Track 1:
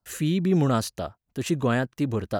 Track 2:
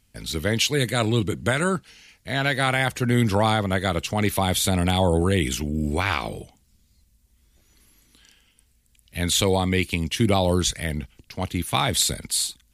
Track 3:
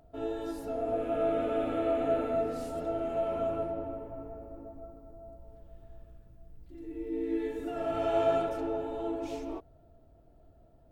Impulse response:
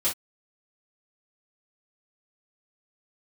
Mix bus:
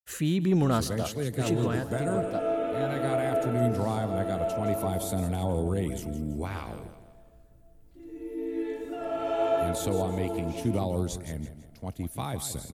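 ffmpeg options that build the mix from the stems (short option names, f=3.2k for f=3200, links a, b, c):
-filter_complex "[0:a]agate=range=-33dB:threshold=-43dB:ratio=3:detection=peak,acontrast=79,volume=-9dB,afade=t=out:st=1.36:d=0.38:silence=0.421697,asplit=2[a][b];[b]volume=-16dB[c];[1:a]equalizer=f=2.9k:w=0.44:g=-13.5,adelay=450,volume=-7dB,asplit=2[d][e];[e]volume=-11.5dB[f];[2:a]acrossover=split=220[g][h];[g]acompressor=threshold=-53dB:ratio=6[i];[i][h]amix=inputs=2:normalize=0,adelay=1250,volume=1dB[j];[c][f]amix=inputs=2:normalize=0,aecho=0:1:165|330|495|660|825|990:1|0.4|0.16|0.064|0.0256|0.0102[k];[a][d][j][k]amix=inputs=4:normalize=0"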